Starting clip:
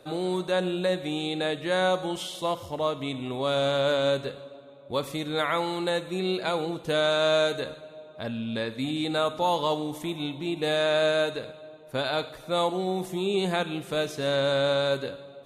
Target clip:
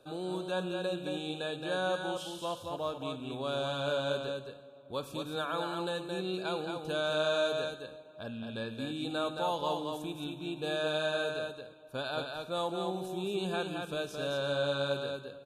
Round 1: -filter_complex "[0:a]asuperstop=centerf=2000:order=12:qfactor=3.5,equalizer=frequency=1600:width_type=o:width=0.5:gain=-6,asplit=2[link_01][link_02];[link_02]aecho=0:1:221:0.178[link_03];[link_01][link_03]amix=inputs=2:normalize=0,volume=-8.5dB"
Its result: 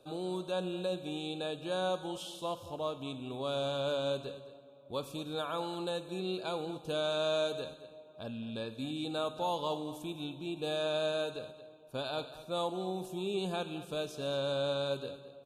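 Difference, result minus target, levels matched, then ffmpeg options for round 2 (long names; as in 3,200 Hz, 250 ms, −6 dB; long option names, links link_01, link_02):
echo-to-direct −10.5 dB; 2,000 Hz band −5.5 dB
-filter_complex "[0:a]asuperstop=centerf=2000:order=12:qfactor=3.5,equalizer=frequency=1600:width_type=o:width=0.5:gain=2,asplit=2[link_01][link_02];[link_02]aecho=0:1:221:0.596[link_03];[link_01][link_03]amix=inputs=2:normalize=0,volume=-8.5dB"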